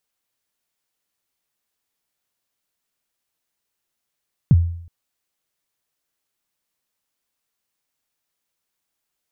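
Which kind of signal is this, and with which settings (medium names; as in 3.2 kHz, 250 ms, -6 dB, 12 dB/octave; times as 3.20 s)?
kick drum length 0.37 s, from 180 Hz, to 85 Hz, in 37 ms, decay 0.64 s, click off, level -6 dB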